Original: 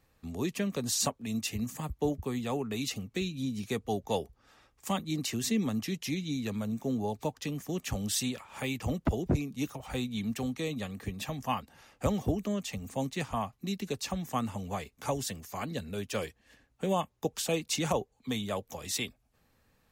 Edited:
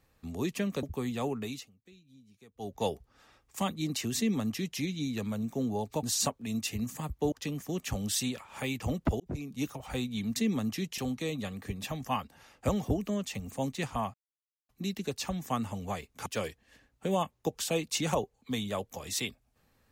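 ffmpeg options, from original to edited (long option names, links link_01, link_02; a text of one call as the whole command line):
ffmpeg -i in.wav -filter_complex "[0:a]asplit=11[link_01][link_02][link_03][link_04][link_05][link_06][link_07][link_08][link_09][link_10][link_11];[link_01]atrim=end=0.832[link_12];[link_02]atrim=start=2.118:end=2.97,asetpts=PTS-STARTPTS,afade=type=out:start_time=0.552:duration=0.3:silence=0.0630957[link_13];[link_03]atrim=start=2.97:end=3.82,asetpts=PTS-STARTPTS,volume=-24dB[link_14];[link_04]atrim=start=3.82:end=7.322,asetpts=PTS-STARTPTS,afade=type=in:duration=0.3:silence=0.0630957[link_15];[link_05]atrim=start=0.828:end=2.122[link_16];[link_06]atrim=start=7.318:end=9.2,asetpts=PTS-STARTPTS,afade=type=out:start_time=1.878:duration=0.004:curve=hsin[link_17];[link_07]atrim=start=9.2:end=10.362,asetpts=PTS-STARTPTS,afade=type=in:duration=0.38[link_18];[link_08]atrim=start=5.458:end=6.082[link_19];[link_09]atrim=start=10.358:end=13.52,asetpts=PTS-STARTPTS,afade=type=out:start_time=3.158:duration=0.004:curve=hsin,apad=pad_dur=0.55[link_20];[link_10]atrim=start=13.52:end=15.092,asetpts=PTS-STARTPTS,afade=type=in:duration=0.004:curve=hsin[link_21];[link_11]atrim=start=16.038[link_22];[link_13][link_14][link_15]concat=n=3:v=0:a=1[link_23];[link_12][link_23]acrossfade=duration=0.004:curve1=hsin:curve2=hsin[link_24];[link_24][link_16]acrossfade=duration=0.004:curve1=hsin:curve2=hsin[link_25];[link_17][link_18]concat=n=2:v=0:a=1[link_26];[link_25][link_26]acrossfade=duration=0.004:curve1=hsin:curve2=hsin[link_27];[link_27][link_19]acrossfade=duration=0.004:curve1=hsin:curve2=hsin[link_28];[link_20][link_21]concat=n=2:v=0:a=1[link_29];[link_28][link_29]acrossfade=duration=0.004:curve1=hsin:curve2=hsin[link_30];[link_30][link_22]acrossfade=duration=0.004:curve1=hsin:curve2=hsin" out.wav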